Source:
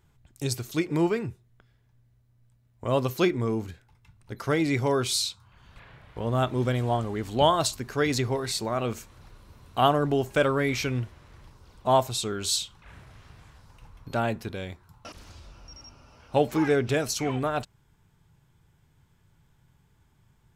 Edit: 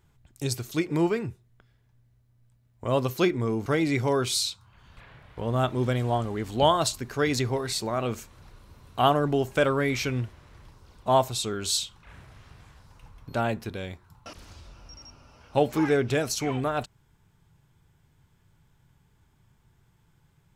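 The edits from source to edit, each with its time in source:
3.66–4.45 s: delete

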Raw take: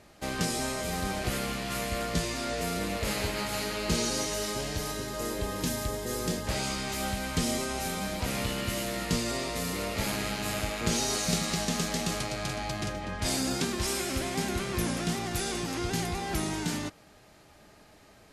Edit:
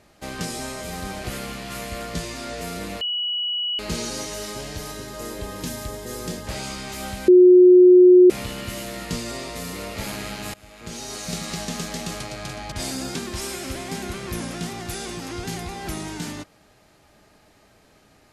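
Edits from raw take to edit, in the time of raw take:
3.01–3.79 s: bleep 2.93 kHz -22.5 dBFS
7.28–8.30 s: bleep 362 Hz -7 dBFS
10.54–11.53 s: fade in, from -23.5 dB
12.72–13.18 s: delete

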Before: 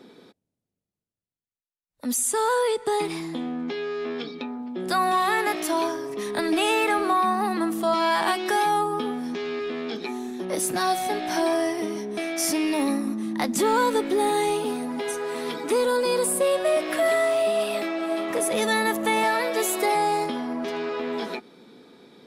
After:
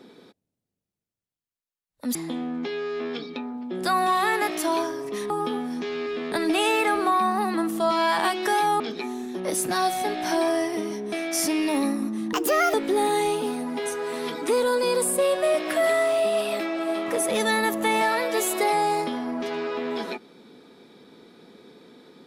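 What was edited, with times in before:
2.15–3.20 s: delete
8.83–9.85 s: move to 6.35 s
13.38–13.96 s: speed 142%

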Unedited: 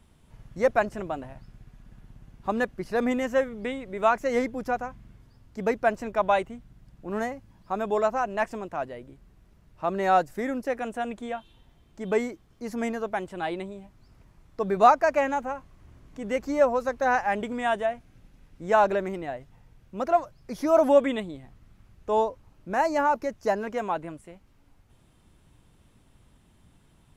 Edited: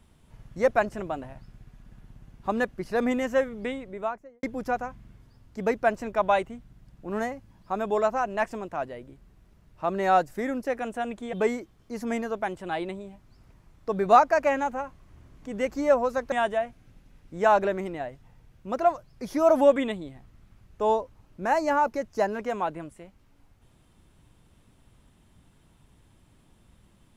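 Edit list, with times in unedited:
3.64–4.43 s: studio fade out
11.33–12.04 s: delete
17.03–17.60 s: delete

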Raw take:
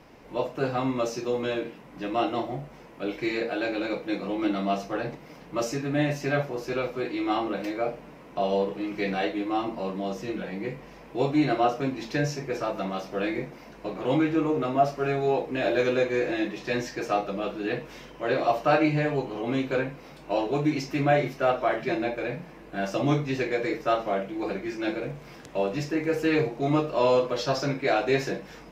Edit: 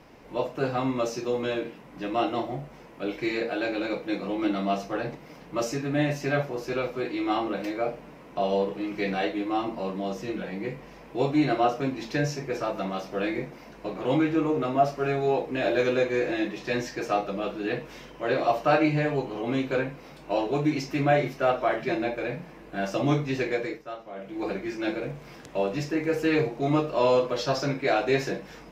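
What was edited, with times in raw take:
23.54–24.43 s: dip -13.5 dB, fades 0.29 s

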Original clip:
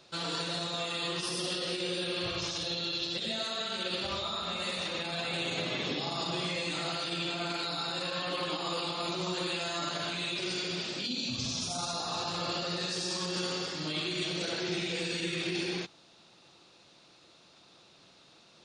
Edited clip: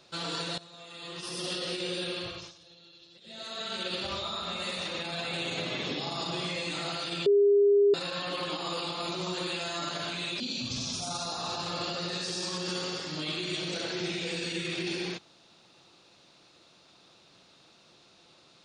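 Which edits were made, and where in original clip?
0.58–1.50 s: fade in quadratic, from -16.5 dB
2.07–3.72 s: dip -21 dB, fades 0.49 s
7.26–7.94 s: bleep 405 Hz -18 dBFS
10.40–11.08 s: delete

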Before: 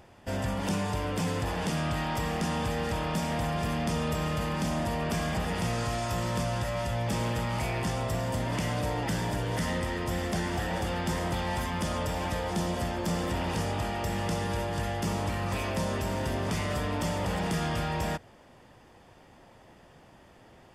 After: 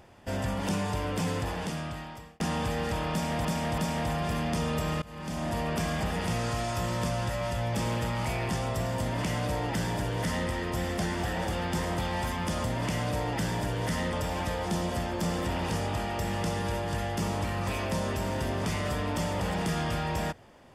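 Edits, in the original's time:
1.34–2.40 s: fade out
3.12–3.45 s: loop, 3 plays
4.36–4.91 s: fade in, from -23.5 dB
8.34–9.83 s: copy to 11.98 s

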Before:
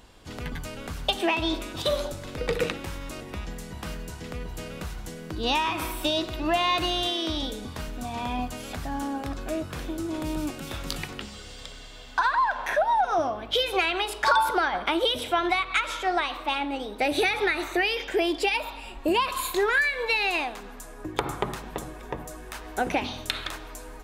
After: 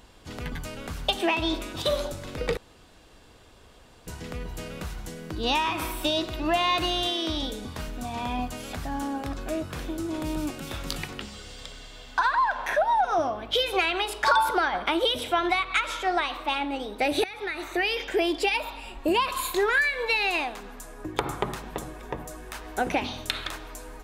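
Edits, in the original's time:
2.57–4.07 s: room tone
17.24–17.94 s: fade in, from -17.5 dB

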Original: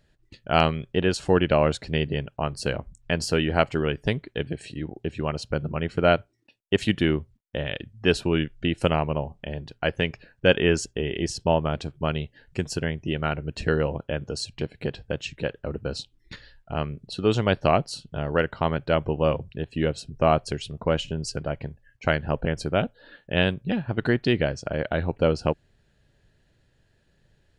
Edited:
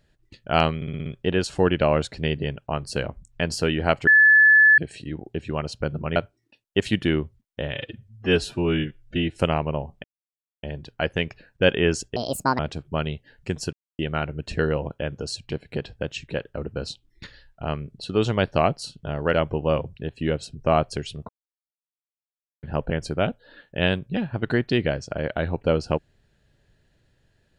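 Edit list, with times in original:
0.76 s: stutter 0.06 s, 6 plays
3.77–4.48 s: bleep 1.73 kHz -10.5 dBFS
5.86–6.12 s: delete
7.70–8.78 s: stretch 1.5×
9.46 s: insert silence 0.59 s
10.99–11.68 s: speed 161%
12.82–13.08 s: mute
18.43–18.89 s: delete
20.84–22.18 s: mute

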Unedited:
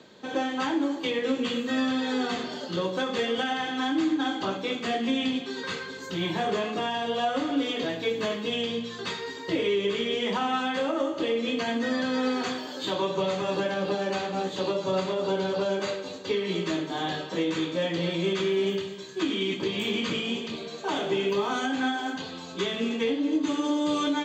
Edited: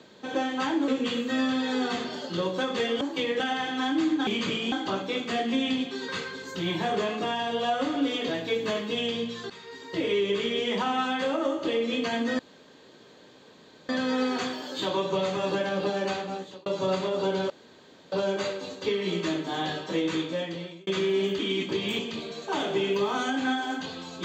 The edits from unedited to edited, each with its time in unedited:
0.88–1.27 s: move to 3.40 s
9.05–9.68 s: fade in, from -17.5 dB
11.94 s: insert room tone 1.50 s
14.15–14.71 s: fade out
15.55 s: insert room tone 0.62 s
17.60–18.30 s: fade out
18.82–19.30 s: delete
19.90–20.35 s: move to 4.27 s

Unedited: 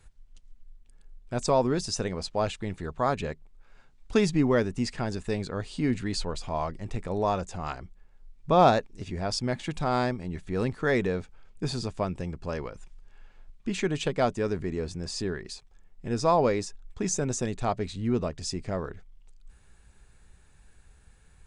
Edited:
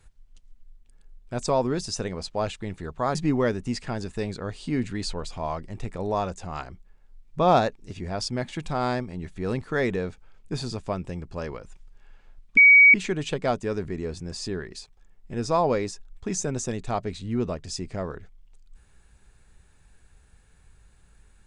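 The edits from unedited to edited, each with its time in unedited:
3.15–4.26 s: delete
13.68 s: add tone 2.26 kHz -9.5 dBFS 0.37 s

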